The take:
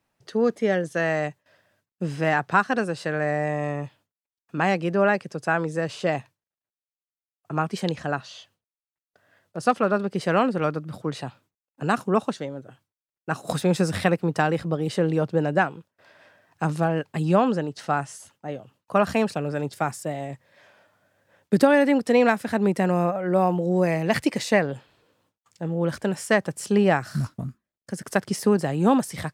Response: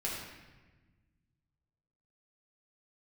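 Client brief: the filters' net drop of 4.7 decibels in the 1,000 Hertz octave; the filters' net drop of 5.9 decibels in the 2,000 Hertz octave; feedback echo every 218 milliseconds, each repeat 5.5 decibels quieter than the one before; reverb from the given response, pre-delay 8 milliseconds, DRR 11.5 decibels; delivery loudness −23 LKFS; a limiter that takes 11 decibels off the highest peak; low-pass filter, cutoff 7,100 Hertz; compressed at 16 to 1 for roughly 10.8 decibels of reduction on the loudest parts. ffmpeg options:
-filter_complex "[0:a]lowpass=7100,equalizer=frequency=1000:width_type=o:gain=-5.5,equalizer=frequency=2000:width_type=o:gain=-5.5,acompressor=threshold=-24dB:ratio=16,alimiter=limit=-24dB:level=0:latency=1,aecho=1:1:218|436|654|872|1090|1308|1526:0.531|0.281|0.149|0.079|0.0419|0.0222|0.0118,asplit=2[link_01][link_02];[1:a]atrim=start_sample=2205,adelay=8[link_03];[link_02][link_03]afir=irnorm=-1:irlink=0,volume=-15.5dB[link_04];[link_01][link_04]amix=inputs=2:normalize=0,volume=10.5dB"

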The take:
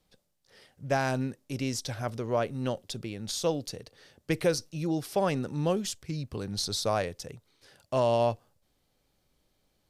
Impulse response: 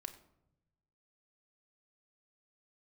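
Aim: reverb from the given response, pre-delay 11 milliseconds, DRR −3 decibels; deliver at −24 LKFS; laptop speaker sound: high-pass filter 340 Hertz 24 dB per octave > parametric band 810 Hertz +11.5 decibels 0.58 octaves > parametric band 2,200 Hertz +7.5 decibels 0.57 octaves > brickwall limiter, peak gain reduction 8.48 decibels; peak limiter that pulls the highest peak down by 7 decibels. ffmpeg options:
-filter_complex "[0:a]alimiter=limit=-21.5dB:level=0:latency=1,asplit=2[link_01][link_02];[1:a]atrim=start_sample=2205,adelay=11[link_03];[link_02][link_03]afir=irnorm=-1:irlink=0,volume=6.5dB[link_04];[link_01][link_04]amix=inputs=2:normalize=0,highpass=frequency=340:width=0.5412,highpass=frequency=340:width=1.3066,equalizer=frequency=810:width_type=o:width=0.58:gain=11.5,equalizer=frequency=2200:width_type=o:width=0.57:gain=7.5,volume=6dB,alimiter=limit=-12.5dB:level=0:latency=1"

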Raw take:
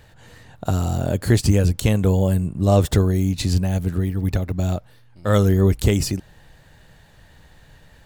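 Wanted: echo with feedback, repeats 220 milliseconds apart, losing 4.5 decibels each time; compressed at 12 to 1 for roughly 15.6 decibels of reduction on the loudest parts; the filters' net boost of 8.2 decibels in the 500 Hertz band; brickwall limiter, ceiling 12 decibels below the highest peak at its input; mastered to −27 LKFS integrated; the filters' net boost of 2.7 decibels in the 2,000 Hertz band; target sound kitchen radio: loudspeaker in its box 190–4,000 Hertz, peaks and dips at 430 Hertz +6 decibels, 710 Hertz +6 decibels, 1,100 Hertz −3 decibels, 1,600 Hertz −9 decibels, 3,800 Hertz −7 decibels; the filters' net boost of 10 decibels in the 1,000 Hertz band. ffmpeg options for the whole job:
ffmpeg -i in.wav -af "equalizer=frequency=500:width_type=o:gain=3.5,equalizer=frequency=1000:width_type=o:gain=8,equalizer=frequency=2000:width_type=o:gain=5.5,acompressor=threshold=-25dB:ratio=12,alimiter=limit=-22dB:level=0:latency=1,highpass=190,equalizer=frequency=430:width_type=q:width=4:gain=6,equalizer=frequency=710:width_type=q:width=4:gain=6,equalizer=frequency=1100:width_type=q:width=4:gain=-3,equalizer=frequency=1600:width_type=q:width=4:gain=-9,equalizer=frequency=3800:width_type=q:width=4:gain=-7,lowpass=frequency=4000:width=0.5412,lowpass=frequency=4000:width=1.3066,aecho=1:1:220|440|660|880|1100|1320|1540|1760|1980:0.596|0.357|0.214|0.129|0.0772|0.0463|0.0278|0.0167|0.01,volume=5dB" out.wav

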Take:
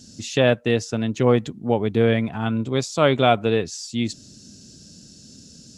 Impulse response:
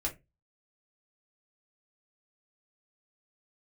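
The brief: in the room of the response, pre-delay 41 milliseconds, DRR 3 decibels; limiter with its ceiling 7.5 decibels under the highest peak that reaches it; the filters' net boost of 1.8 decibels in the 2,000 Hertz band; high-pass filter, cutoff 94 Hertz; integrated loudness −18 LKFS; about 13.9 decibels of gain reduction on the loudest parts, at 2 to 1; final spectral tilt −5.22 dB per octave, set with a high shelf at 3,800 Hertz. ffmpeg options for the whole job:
-filter_complex "[0:a]highpass=94,equalizer=frequency=2000:width_type=o:gain=3.5,highshelf=frequency=3800:gain=-4.5,acompressor=threshold=-38dB:ratio=2,alimiter=limit=-23dB:level=0:latency=1,asplit=2[link_01][link_02];[1:a]atrim=start_sample=2205,adelay=41[link_03];[link_02][link_03]afir=irnorm=-1:irlink=0,volume=-6dB[link_04];[link_01][link_04]amix=inputs=2:normalize=0,volume=16dB"

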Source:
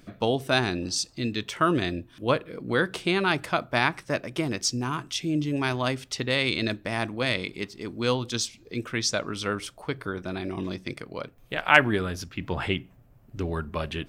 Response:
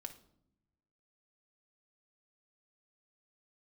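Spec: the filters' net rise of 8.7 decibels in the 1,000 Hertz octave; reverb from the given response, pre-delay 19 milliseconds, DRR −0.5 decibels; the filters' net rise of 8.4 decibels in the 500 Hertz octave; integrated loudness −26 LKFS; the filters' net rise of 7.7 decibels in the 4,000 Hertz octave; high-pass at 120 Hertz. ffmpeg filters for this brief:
-filter_complex "[0:a]highpass=120,equalizer=frequency=500:width_type=o:gain=8,equalizer=frequency=1000:width_type=o:gain=8.5,equalizer=frequency=4000:width_type=o:gain=9,asplit=2[link_01][link_02];[1:a]atrim=start_sample=2205,adelay=19[link_03];[link_02][link_03]afir=irnorm=-1:irlink=0,volume=5dB[link_04];[link_01][link_04]amix=inputs=2:normalize=0,volume=-8.5dB"

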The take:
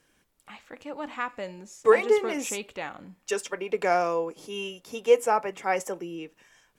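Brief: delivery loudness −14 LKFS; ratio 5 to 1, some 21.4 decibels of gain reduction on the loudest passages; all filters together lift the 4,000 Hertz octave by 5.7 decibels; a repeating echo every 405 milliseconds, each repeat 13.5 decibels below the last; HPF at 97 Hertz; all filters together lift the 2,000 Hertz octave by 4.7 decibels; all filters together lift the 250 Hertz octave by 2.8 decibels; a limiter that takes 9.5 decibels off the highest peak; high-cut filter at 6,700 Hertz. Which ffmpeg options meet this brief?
ffmpeg -i in.wav -af "highpass=97,lowpass=6700,equalizer=frequency=250:width_type=o:gain=4,equalizer=frequency=2000:width_type=o:gain=4,equalizer=frequency=4000:width_type=o:gain=7,acompressor=threshold=-37dB:ratio=5,alimiter=level_in=9dB:limit=-24dB:level=0:latency=1,volume=-9dB,aecho=1:1:405|810:0.211|0.0444,volume=29dB" out.wav

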